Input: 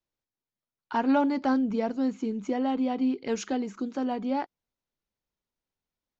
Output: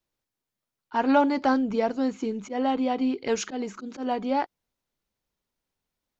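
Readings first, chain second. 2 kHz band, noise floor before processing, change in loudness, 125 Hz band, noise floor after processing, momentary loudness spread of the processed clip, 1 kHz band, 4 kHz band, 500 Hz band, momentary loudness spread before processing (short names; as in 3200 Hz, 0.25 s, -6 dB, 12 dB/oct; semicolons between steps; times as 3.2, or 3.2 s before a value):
+4.5 dB, under -85 dBFS, +2.0 dB, n/a, under -85 dBFS, 11 LU, +4.5 dB, +5.0 dB, +4.0 dB, 8 LU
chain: auto swell 0.11 s; dynamic EQ 220 Hz, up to -6 dB, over -40 dBFS, Q 1.3; gain +5.5 dB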